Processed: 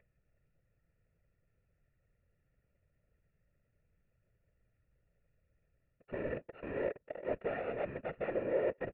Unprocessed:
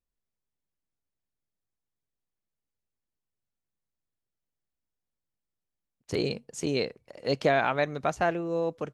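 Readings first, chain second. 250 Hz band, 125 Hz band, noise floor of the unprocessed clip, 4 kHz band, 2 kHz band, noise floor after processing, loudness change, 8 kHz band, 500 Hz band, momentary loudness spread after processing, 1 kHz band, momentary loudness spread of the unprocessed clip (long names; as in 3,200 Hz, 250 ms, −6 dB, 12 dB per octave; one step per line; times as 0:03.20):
−11.0 dB, −13.0 dB, below −85 dBFS, below −20 dB, −12.5 dB, −79 dBFS, −9.5 dB, below −30 dB, −7.0 dB, 9 LU, −15.0 dB, 9 LU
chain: samples sorted by size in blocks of 32 samples
low-shelf EQ 280 Hz +9 dB
in parallel at −1 dB: upward compression, threshold −28 dBFS
on the sum: leveller curve on the samples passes 2
reversed playback
downward compressor 5 to 1, threshold −24 dBFS, peak gain reduction 14 dB
reversed playback
formant resonators in series e
random phases in short frames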